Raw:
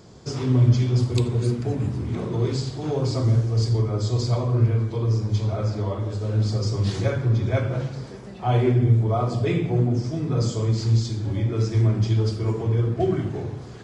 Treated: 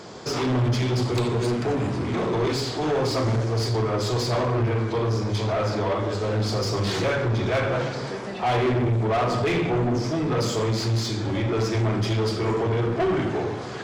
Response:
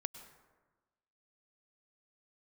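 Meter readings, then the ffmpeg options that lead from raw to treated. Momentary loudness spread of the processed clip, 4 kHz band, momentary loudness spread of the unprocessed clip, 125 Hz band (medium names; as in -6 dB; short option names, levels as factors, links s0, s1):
3 LU, +6.0 dB, 8 LU, -5.0 dB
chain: -filter_complex "[0:a]bandreject=f=138.1:t=h:w=4,bandreject=f=276.2:t=h:w=4,bandreject=f=414.3:t=h:w=4,bandreject=f=552.4:t=h:w=4,bandreject=f=690.5:t=h:w=4,bandreject=f=828.6:t=h:w=4,bandreject=f=966.7:t=h:w=4,bandreject=f=1104.8:t=h:w=4,bandreject=f=1242.9:t=h:w=4,bandreject=f=1381:t=h:w=4,bandreject=f=1519.1:t=h:w=4,bandreject=f=1657.2:t=h:w=4,bandreject=f=1795.3:t=h:w=4,bandreject=f=1933.4:t=h:w=4,bandreject=f=2071.5:t=h:w=4,bandreject=f=2209.6:t=h:w=4,bandreject=f=2347.7:t=h:w=4,bandreject=f=2485.8:t=h:w=4,bandreject=f=2623.9:t=h:w=4,bandreject=f=2762:t=h:w=4,bandreject=f=2900.1:t=h:w=4,bandreject=f=3038.2:t=h:w=4,bandreject=f=3176.3:t=h:w=4,bandreject=f=3314.4:t=h:w=4,bandreject=f=3452.5:t=h:w=4,bandreject=f=3590.6:t=h:w=4,bandreject=f=3728.7:t=h:w=4,bandreject=f=3866.8:t=h:w=4,bandreject=f=4004.9:t=h:w=4,bandreject=f=4143:t=h:w=4,bandreject=f=4281.1:t=h:w=4,bandreject=f=4419.2:t=h:w=4,bandreject=f=4557.3:t=h:w=4,asplit=2[s0][s1];[s1]highpass=f=720:p=1,volume=28.2,asoftclip=type=tanh:threshold=0.447[s2];[s0][s2]amix=inputs=2:normalize=0,lowpass=f=2900:p=1,volume=0.501,volume=0.422"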